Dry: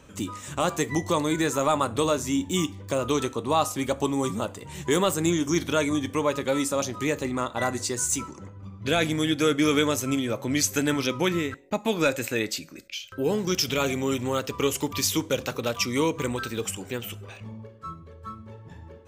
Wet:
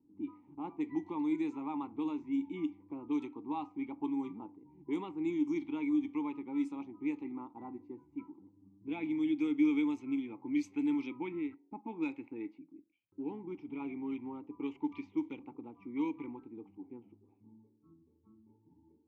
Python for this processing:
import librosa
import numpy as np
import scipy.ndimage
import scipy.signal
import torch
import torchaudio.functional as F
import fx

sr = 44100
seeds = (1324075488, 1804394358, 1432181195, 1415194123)

y = fx.vowel_filter(x, sr, vowel='u')
y = fx.env_lowpass(y, sr, base_hz=360.0, full_db=-25.5)
y = y * 10.0 ** (-3.0 / 20.0)